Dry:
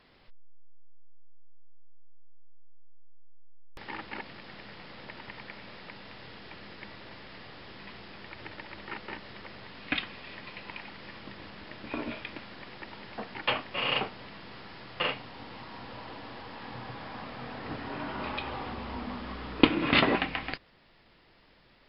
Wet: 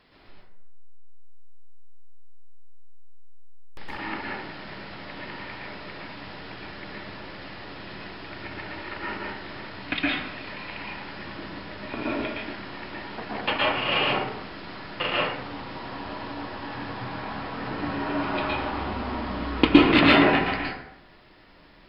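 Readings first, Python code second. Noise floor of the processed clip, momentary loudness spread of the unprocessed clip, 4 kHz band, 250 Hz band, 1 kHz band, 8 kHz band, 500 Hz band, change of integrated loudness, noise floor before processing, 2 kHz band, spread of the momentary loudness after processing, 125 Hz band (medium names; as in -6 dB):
-52 dBFS, 17 LU, +5.5 dB, +9.0 dB, +8.0 dB, no reading, +8.0 dB, +7.5 dB, -61 dBFS, +7.0 dB, 17 LU, +7.5 dB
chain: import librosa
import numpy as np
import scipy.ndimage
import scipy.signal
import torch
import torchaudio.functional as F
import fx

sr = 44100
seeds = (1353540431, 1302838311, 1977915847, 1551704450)

p1 = 10.0 ** (-12.5 / 20.0) * np.tanh(x / 10.0 ** (-12.5 / 20.0))
p2 = x + (p1 * librosa.db_to_amplitude(-11.5))
p3 = fx.rev_plate(p2, sr, seeds[0], rt60_s=0.83, hf_ratio=0.5, predelay_ms=105, drr_db=-5.5)
y = p3 * librosa.db_to_amplitude(-1.0)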